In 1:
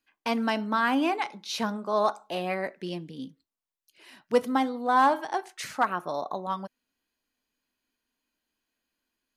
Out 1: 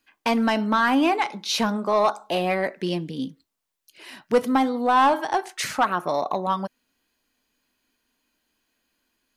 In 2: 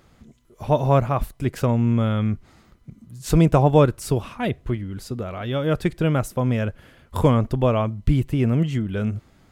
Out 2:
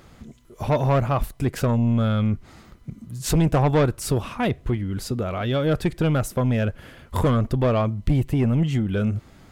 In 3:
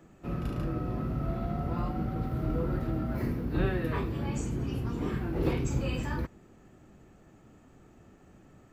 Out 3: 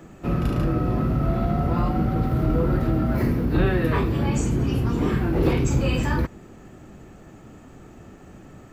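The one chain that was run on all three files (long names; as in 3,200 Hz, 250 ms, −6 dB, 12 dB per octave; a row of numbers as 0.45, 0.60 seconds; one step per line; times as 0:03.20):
in parallel at −1 dB: downward compressor, threshold −30 dBFS
on the sum: soft clipping −14 dBFS
loudness normalisation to −23 LKFS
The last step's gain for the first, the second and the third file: +3.5, +0.5, +6.0 decibels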